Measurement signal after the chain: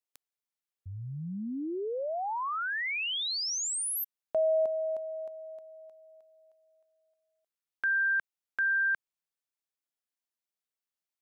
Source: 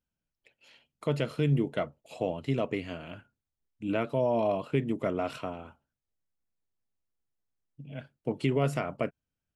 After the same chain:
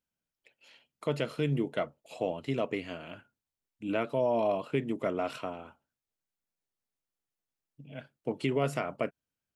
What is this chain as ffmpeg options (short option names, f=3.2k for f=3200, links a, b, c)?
-af "lowshelf=f=130:g=-11.5"